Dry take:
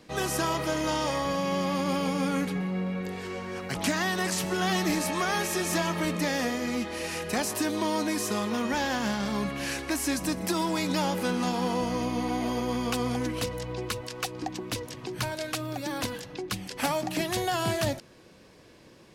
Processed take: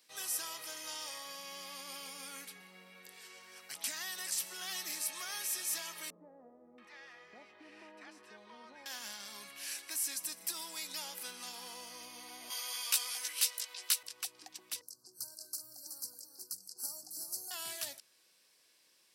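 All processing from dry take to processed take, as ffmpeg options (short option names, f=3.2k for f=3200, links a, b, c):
-filter_complex "[0:a]asettb=1/sr,asplit=3[a][b][c];[a]atrim=end=6.104[d];[b]atrim=start=6.1:end=8.86,asetpts=PTS-STARTPTS,afade=t=in:d=0.004:c=qsin,afade=t=out:st=2.756:d=0.004:c=qsin,lowpass=1.5k,acrossover=split=820[e][f];[f]adelay=680[g];[e][g]amix=inputs=2:normalize=0,atrim=end_sample=121716[h];[c]atrim=start=8.856[i];[d][h]acrossfade=d=0.004:c1=hsin:c2=qsin[j];[j][i]acrossfade=d=0.004:c1=qsin:c2=hsin,asettb=1/sr,asplit=3[k][l][m];[k]atrim=end=12.504[n];[l]atrim=start=12.5:end=14.03,asetpts=PTS-STARTPTS,afade=t=in:d=0.004:c=qsin,afade=t=out:st=1.526:d=0.004:c=qsin,highpass=450,tiltshelf=f=780:g=-9,asplit=2[o][p];[p]adelay=16,volume=-3dB[q];[o][q]amix=inputs=2:normalize=0,atrim=end_sample=67473[r];[m]atrim=start=14.026[s];[n][r]acrossfade=d=0.004:c1=hsin:c2=qsin[t];[t][s]acrossfade=d=0.004:c1=qsin:c2=hsin,asettb=1/sr,asplit=3[u][v][w];[u]atrim=end=14.814[x];[v]atrim=start=14.81:end=17.51,asetpts=PTS-STARTPTS,afade=t=in:d=0.004:c=qsin,afade=t=out:st=2.696:d=0.004:c=qsin,asuperstop=centerf=2600:order=20:qfactor=0.96,equalizer=f=1.2k:w=0.55:g=-14,aecho=1:1:374:0.447,atrim=end_sample=119070[y];[w]atrim=start=17.506[z];[x][y]acrossfade=d=0.004:c1=hsin:c2=qsin[aa];[aa][z]acrossfade=d=0.004:c1=qsin:c2=hsin,aderivative,bandreject=f=6.7k:w=14,volume=-2.5dB"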